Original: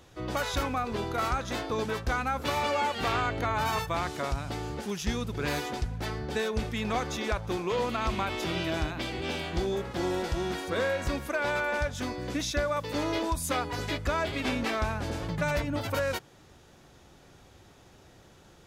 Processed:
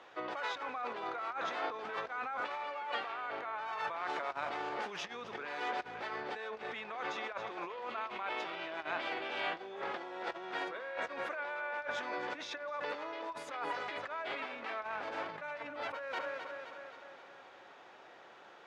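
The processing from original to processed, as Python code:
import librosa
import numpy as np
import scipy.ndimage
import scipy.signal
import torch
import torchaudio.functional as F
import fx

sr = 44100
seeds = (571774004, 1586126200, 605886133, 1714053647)

y = fx.echo_feedback(x, sr, ms=261, feedback_pct=58, wet_db=-14.5)
y = fx.over_compress(y, sr, threshold_db=-36.0, ratio=-1.0)
y = fx.bandpass_edges(y, sr, low_hz=660.0, high_hz=2300.0)
y = y * 10.0 ** (1.5 / 20.0)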